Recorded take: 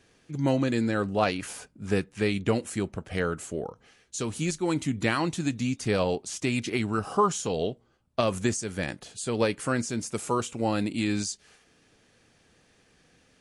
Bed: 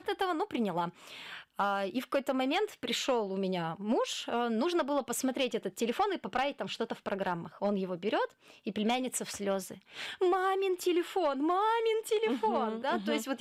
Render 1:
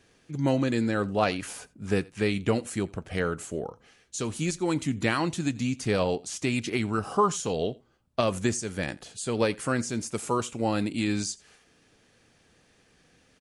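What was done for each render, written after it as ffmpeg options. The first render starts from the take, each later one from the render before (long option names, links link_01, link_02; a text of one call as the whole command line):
ffmpeg -i in.wav -af "aecho=1:1:85:0.0668" out.wav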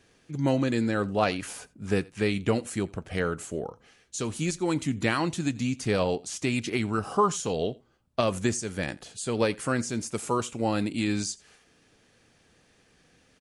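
ffmpeg -i in.wav -af anull out.wav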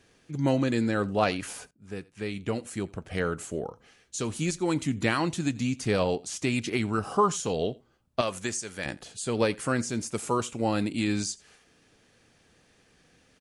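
ffmpeg -i in.wav -filter_complex "[0:a]asettb=1/sr,asplit=3[link_01][link_02][link_03];[link_01]atrim=end=8.214[link_04];[link_02]atrim=start=8.21:end=8.86,asetpts=PTS-STARTPTS,afade=type=in:duration=0.004:curve=qsin,afade=type=out:start_time=0.646:duration=0.004:curve=qsin,lowshelf=frequency=470:gain=-11[link_05];[link_03]atrim=start=8.856[link_06];[link_04][link_05]acrossfade=duration=0.004:curve1=hsin:curve2=qsin[link_07];[link_07][link_06]acrossfade=duration=0.004:curve1=qsin:curve2=hsin,asplit=2[link_08][link_09];[link_08]atrim=end=1.71,asetpts=PTS-STARTPTS,afade=type=out:start_time=1.706:duration=0.004:curve=hsin:silence=0.133352[link_10];[link_09]atrim=start=1.71,asetpts=PTS-STARTPTS,afade=type=in:duration=1.66:silence=0.133352[link_11];[link_10][link_11]concat=n=2:v=0:a=1" out.wav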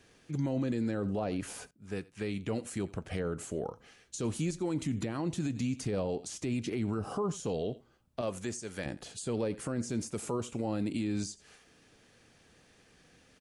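ffmpeg -i in.wav -filter_complex "[0:a]acrossover=split=710[link_01][link_02];[link_02]acompressor=threshold=-40dB:ratio=6[link_03];[link_01][link_03]amix=inputs=2:normalize=0,alimiter=level_in=0.5dB:limit=-24dB:level=0:latency=1:release=36,volume=-0.5dB" out.wav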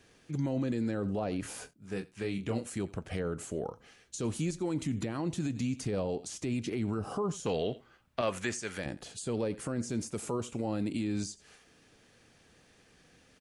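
ffmpeg -i in.wav -filter_complex "[0:a]asettb=1/sr,asplit=3[link_01][link_02][link_03];[link_01]atrim=end=1.414[link_04];[link_02]atrim=start=1.41:end=2.64,asetpts=PTS-STARTPTS,afade=type=in:duration=0.004:curve=qsin,afade=type=out:start_time=1.226:duration=0.004:curve=qsin,asplit=2[link_05][link_06];[link_06]adelay=26,volume=-7dB[link_07];[link_05][link_07]amix=inputs=2:normalize=0,atrim=end_sample=54243[link_08];[link_03]atrim=start=2.636[link_09];[link_04][link_08]acrossfade=duration=0.004:curve1=hsin:curve2=qsin[link_10];[link_10][link_09]acrossfade=duration=0.004:curve1=qsin:curve2=hsin,asettb=1/sr,asplit=3[link_11][link_12][link_13];[link_11]atrim=end=7.464[link_14];[link_12]atrim=start=7.46:end=8.78,asetpts=PTS-STARTPTS,afade=type=in:duration=0.004:curve=qsin,afade=type=out:start_time=1.316:duration=0.004:curve=qsin,equalizer=frequency=1900:width_type=o:width=2.2:gain=11.5[link_15];[link_13]atrim=start=8.776[link_16];[link_14][link_15]acrossfade=duration=0.004:curve1=hsin:curve2=qsin[link_17];[link_17][link_16]acrossfade=duration=0.004:curve1=qsin:curve2=hsin" out.wav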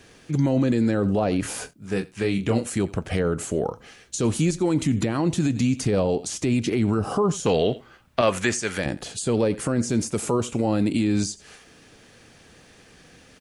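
ffmpeg -i in.wav -af "volume=11dB" out.wav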